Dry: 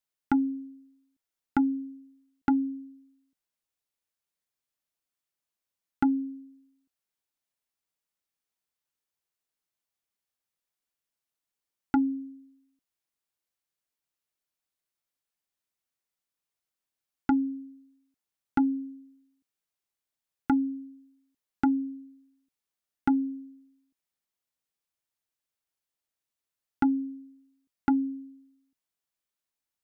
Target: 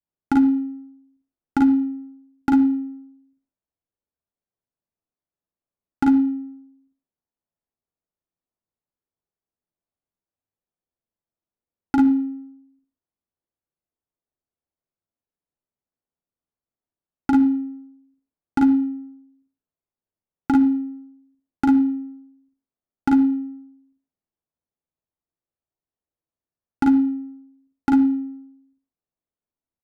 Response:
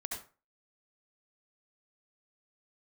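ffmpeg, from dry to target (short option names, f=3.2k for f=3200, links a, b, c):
-filter_complex "[0:a]aecho=1:1:40|52:0.631|0.631,asplit=2[a][b];[1:a]atrim=start_sample=2205[c];[b][c]afir=irnorm=-1:irlink=0,volume=-8dB[d];[a][d]amix=inputs=2:normalize=0,adynamicsmooth=sensitivity=7:basefreq=830,adynamicequalizer=threshold=0.00891:dfrequency=1500:dqfactor=0.77:tfrequency=1500:tqfactor=0.77:attack=5:release=100:ratio=0.375:range=3.5:mode=cutabove:tftype=bell,volume=1.5dB"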